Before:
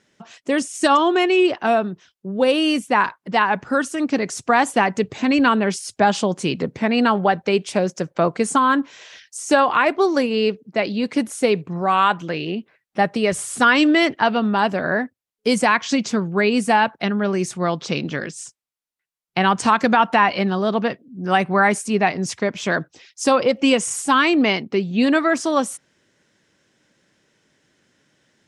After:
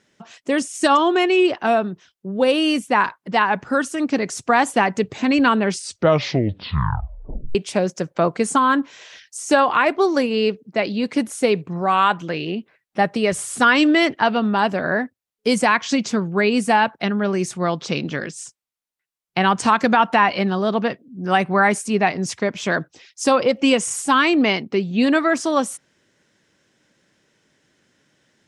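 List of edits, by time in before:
5.69 s: tape stop 1.86 s

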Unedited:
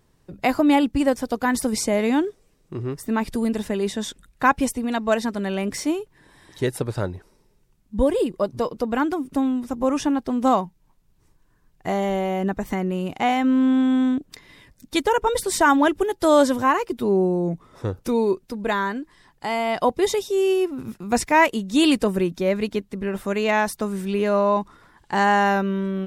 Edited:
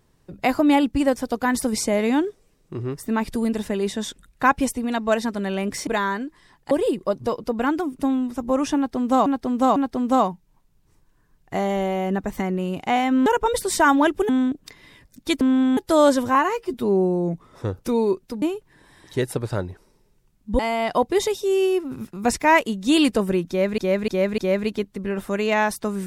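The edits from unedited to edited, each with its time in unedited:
5.87–8.04 s: swap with 18.62–19.46 s
10.09–10.59 s: loop, 3 plays
13.59–13.95 s: swap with 15.07–16.10 s
16.68–16.94 s: stretch 1.5×
22.35–22.65 s: loop, 4 plays

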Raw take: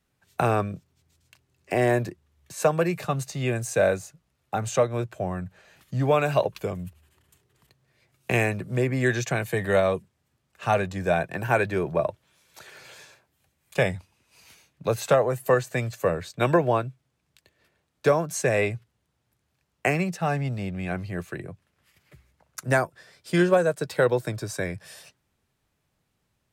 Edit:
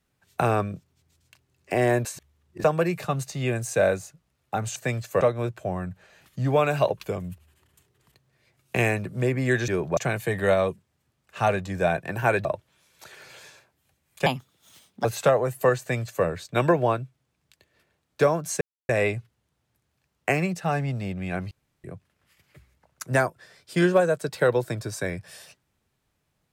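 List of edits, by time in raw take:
2.05–2.64 s: reverse
11.71–12.00 s: move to 9.23 s
13.81–14.90 s: speed 138%
15.65–16.10 s: copy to 4.76 s
18.46 s: insert silence 0.28 s
21.08–21.41 s: room tone

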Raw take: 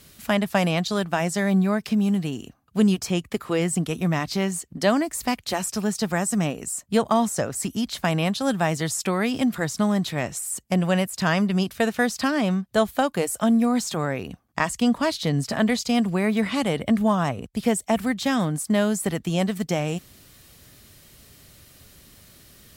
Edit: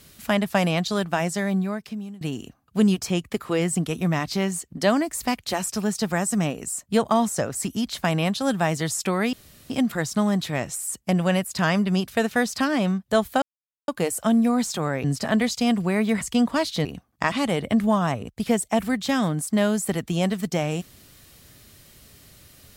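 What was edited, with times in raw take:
1.18–2.21 s: fade out linear, to -23 dB
9.33 s: insert room tone 0.37 s
13.05 s: insert silence 0.46 s
14.21–14.68 s: swap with 15.32–16.49 s

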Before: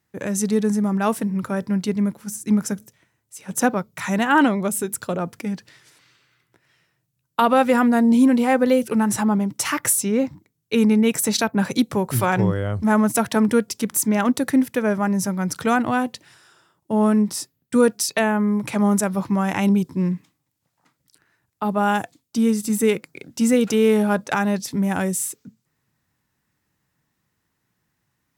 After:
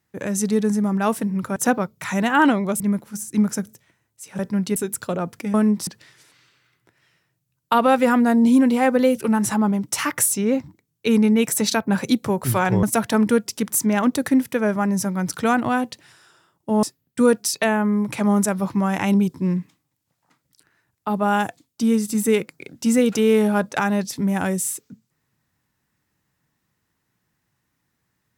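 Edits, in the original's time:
1.56–1.93 s: swap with 3.52–4.76 s
12.50–13.05 s: delete
17.05–17.38 s: move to 5.54 s

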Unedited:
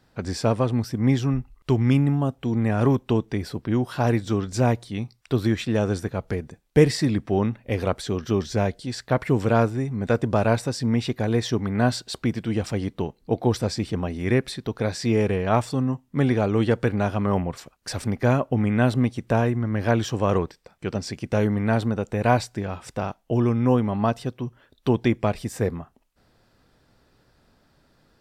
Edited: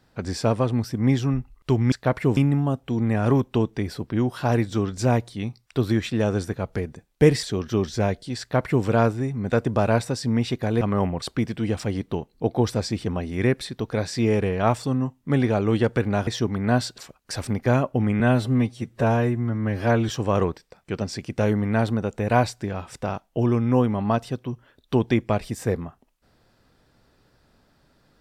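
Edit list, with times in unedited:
6.98–8.00 s: delete
8.97–9.42 s: copy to 1.92 s
11.38–12.09 s: swap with 17.14–17.55 s
18.77–20.03 s: stretch 1.5×

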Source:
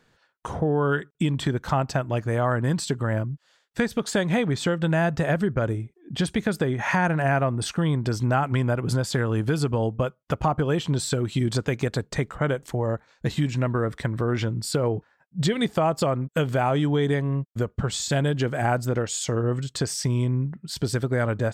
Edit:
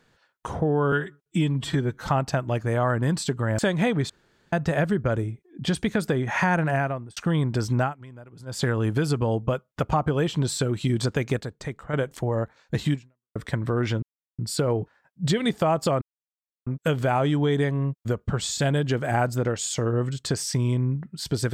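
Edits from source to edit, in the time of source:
0.92–1.69 s: stretch 1.5×
3.20–4.10 s: delete
4.61–5.04 s: room tone
7.19–7.68 s: fade out
8.32–9.11 s: dip -20.5 dB, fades 0.14 s
11.92–12.45 s: gain -7 dB
13.45–13.87 s: fade out exponential
14.54 s: insert silence 0.36 s
16.17 s: insert silence 0.65 s

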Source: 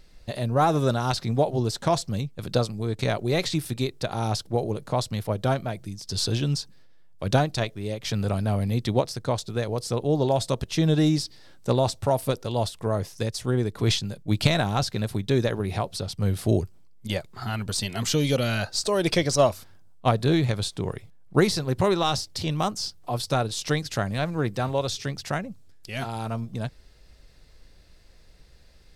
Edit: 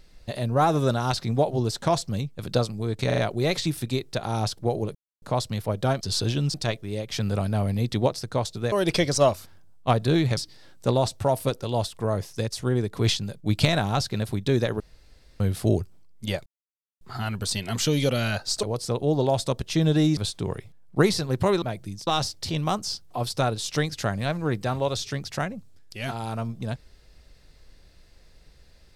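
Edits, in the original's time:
3.06 s: stutter 0.04 s, 4 plays
4.83 s: insert silence 0.27 s
5.62–6.07 s: move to 22.00 s
6.60–7.47 s: delete
9.65–11.19 s: swap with 18.90–20.55 s
15.62–16.22 s: room tone
17.28 s: insert silence 0.55 s

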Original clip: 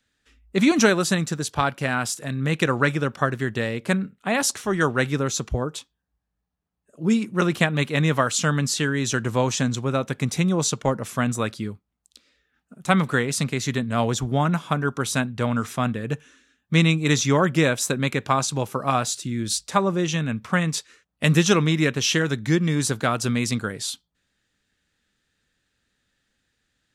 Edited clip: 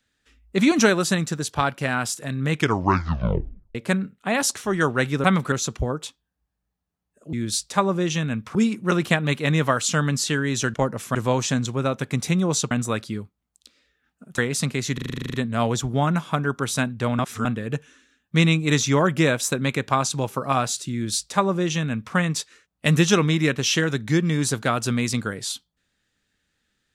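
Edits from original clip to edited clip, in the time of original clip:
2.51 s: tape stop 1.24 s
10.80–11.21 s: move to 9.24 s
12.88–13.16 s: move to 5.24 s
13.72 s: stutter 0.04 s, 11 plays
15.57–15.83 s: reverse
19.31–20.53 s: copy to 7.05 s

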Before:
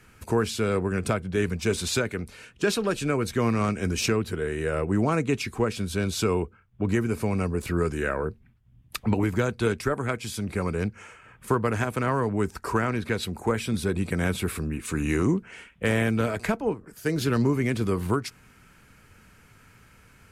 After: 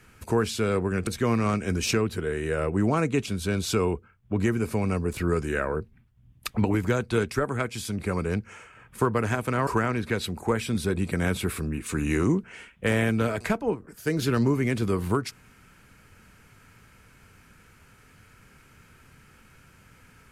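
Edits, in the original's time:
1.07–3.22 s: delete
5.41–5.75 s: delete
12.16–12.66 s: delete

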